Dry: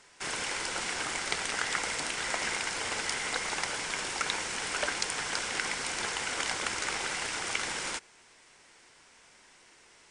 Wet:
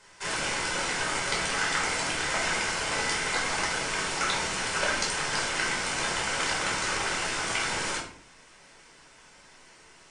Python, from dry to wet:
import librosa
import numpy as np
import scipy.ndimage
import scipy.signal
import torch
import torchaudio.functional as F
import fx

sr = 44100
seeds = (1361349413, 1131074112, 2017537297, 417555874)

y = fx.room_shoebox(x, sr, seeds[0], volume_m3=610.0, walls='furnished', distance_m=5.0)
y = F.gain(torch.from_numpy(y), -2.5).numpy()